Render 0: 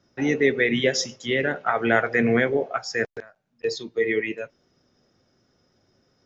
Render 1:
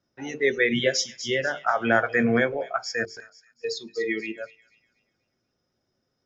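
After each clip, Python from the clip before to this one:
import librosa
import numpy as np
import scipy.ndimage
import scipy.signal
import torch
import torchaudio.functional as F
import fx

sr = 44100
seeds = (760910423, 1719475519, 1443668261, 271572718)

y = fx.hum_notches(x, sr, base_hz=50, count=9)
y = fx.noise_reduce_blind(y, sr, reduce_db=11)
y = fx.echo_wet_highpass(y, sr, ms=242, feedback_pct=34, hz=3700.0, wet_db=-10)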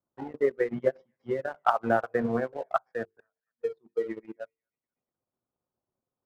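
y = fx.transient(x, sr, attack_db=9, sustain_db=-11)
y = fx.ladder_lowpass(y, sr, hz=1200.0, resonance_pct=50)
y = fx.leveller(y, sr, passes=1)
y = y * librosa.db_to_amplitude(-2.5)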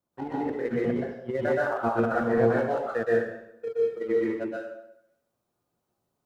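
y = fx.over_compress(x, sr, threshold_db=-29.0, ratio=-0.5)
y = fx.rev_plate(y, sr, seeds[0], rt60_s=0.77, hf_ratio=0.85, predelay_ms=110, drr_db=-5.5)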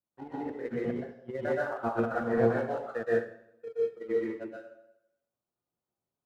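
y = fx.echo_feedback(x, sr, ms=86, feedback_pct=58, wet_db=-20.0)
y = fx.upward_expand(y, sr, threshold_db=-39.0, expansion=1.5)
y = y * librosa.db_to_amplitude(-2.0)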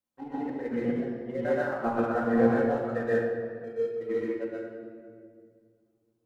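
y = fx.room_shoebox(x, sr, seeds[1], volume_m3=4000.0, walls='mixed', distance_m=2.1)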